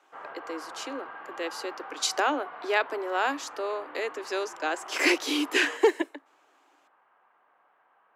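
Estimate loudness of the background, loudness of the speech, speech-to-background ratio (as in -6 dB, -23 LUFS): -42.5 LUFS, -28.5 LUFS, 14.0 dB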